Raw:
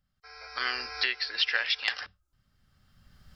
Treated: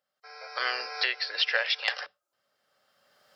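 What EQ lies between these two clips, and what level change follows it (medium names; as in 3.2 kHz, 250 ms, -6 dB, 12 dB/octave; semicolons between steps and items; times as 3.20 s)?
resonant high-pass 550 Hz, resonance Q 3.5; 0.0 dB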